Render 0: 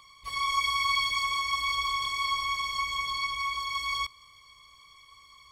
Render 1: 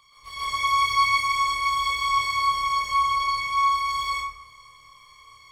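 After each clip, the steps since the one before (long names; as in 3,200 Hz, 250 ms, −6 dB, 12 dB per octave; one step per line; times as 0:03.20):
parametric band 260 Hz −6 dB 0.42 octaves
on a send: flutter between parallel walls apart 4.8 metres, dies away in 0.33 s
on the sum: dense smooth reverb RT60 0.73 s, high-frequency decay 0.45×, pre-delay 115 ms, DRR −8.5 dB
level −4.5 dB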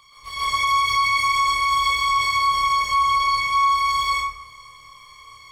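brickwall limiter −18 dBFS, peak gain reduction 7 dB
level +5.5 dB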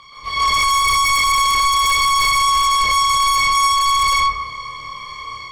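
drawn EQ curve 100 Hz 0 dB, 200 Hz +5 dB, 5,100 Hz −1 dB, 10,000 Hz −13 dB
automatic gain control gain up to 4.5 dB
in parallel at −9 dB: sine wavefolder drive 13 dB, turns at −6 dBFS
on the sum: level −2.5 dB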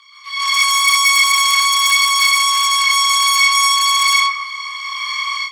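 inverse Chebyshev high-pass filter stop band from 650 Hz, stop band 40 dB
automatic gain control gain up to 15 dB
level −1 dB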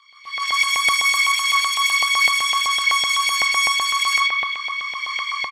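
spring reverb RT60 3.6 s, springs 52 ms, chirp 25 ms, DRR 3.5 dB
auto-filter high-pass saw up 7.9 Hz 770–2,700 Hz
downsampling to 32,000 Hz
level −9 dB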